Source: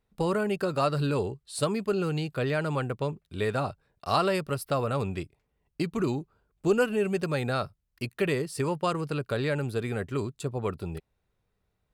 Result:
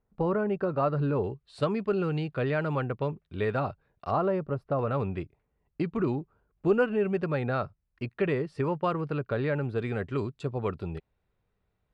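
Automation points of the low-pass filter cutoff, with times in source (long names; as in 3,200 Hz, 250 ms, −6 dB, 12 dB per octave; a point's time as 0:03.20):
1,400 Hz
from 0:01.24 2,600 Hz
from 0:04.11 1,000 Hz
from 0:04.79 2,100 Hz
from 0:09.78 3,400 Hz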